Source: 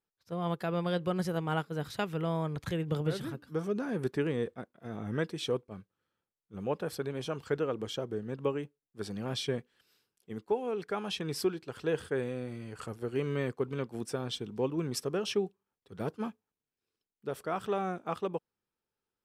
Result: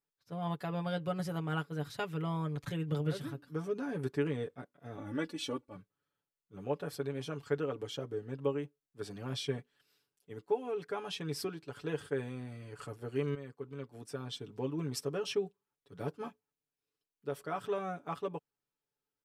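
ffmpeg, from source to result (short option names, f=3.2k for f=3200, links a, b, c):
-filter_complex "[0:a]asettb=1/sr,asplit=3[a][b][c];[a]atrim=end=4.974[d];[b]atrim=start=4.97:end=5.76,asetpts=PTS-STARTPTS,afade=t=in:d=0.004:c=qsin,afade=t=out:st=0.786:d=0.004:c=qsin,aecho=1:1:3.5:0.82,atrim=end_sample=34839[e];[c]atrim=start=5.756[f];[d][e]acrossfade=d=0.004:c1=hsin:c2=qsin[g];[g][f]acrossfade=d=0.004:c1=qsin:c2=hsin,asplit=2[h][i];[h]atrim=end=13.35,asetpts=PTS-STARTPTS,afade=t=out:st=13.346:d=0.004:c=hsin:silence=0.211349[j];[i]atrim=start=13.35,asetpts=PTS-STARTPTS,afade=t=in:d=1.36:silence=0.211349[k];[j][k]concat=n=2:v=0:a=1,aecho=1:1:7:0.75,volume=-5.5dB"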